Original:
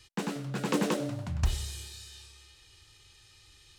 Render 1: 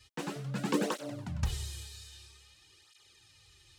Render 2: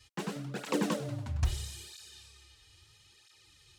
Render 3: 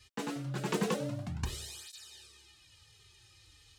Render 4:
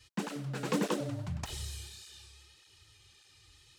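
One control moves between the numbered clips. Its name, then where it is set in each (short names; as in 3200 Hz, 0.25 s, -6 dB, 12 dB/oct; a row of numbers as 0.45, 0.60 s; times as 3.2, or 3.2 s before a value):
tape flanging out of phase, nulls at: 0.51, 0.76, 0.26, 1.7 Hz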